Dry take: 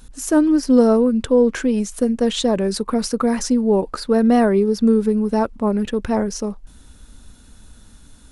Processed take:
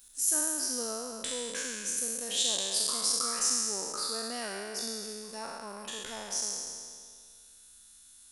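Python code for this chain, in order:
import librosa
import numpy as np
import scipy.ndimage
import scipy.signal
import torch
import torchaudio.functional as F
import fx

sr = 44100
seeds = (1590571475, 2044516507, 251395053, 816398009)

y = fx.spec_trails(x, sr, decay_s=2.05)
y = librosa.effects.preemphasis(y, coef=0.97, zi=[0.0])
y = y * 10.0 ** (-3.5 / 20.0)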